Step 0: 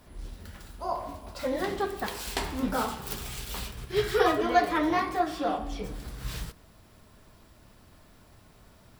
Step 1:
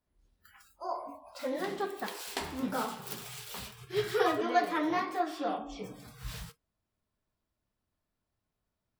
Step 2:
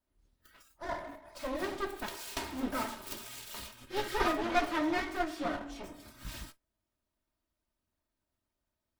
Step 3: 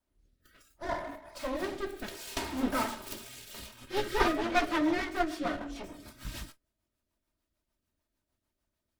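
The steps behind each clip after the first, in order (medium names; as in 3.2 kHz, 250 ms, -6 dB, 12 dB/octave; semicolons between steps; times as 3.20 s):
spectral noise reduction 25 dB; trim -4.5 dB
comb filter that takes the minimum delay 3.2 ms
rotary cabinet horn 0.65 Hz, later 6.7 Hz, at 3.64 s; trim +4.5 dB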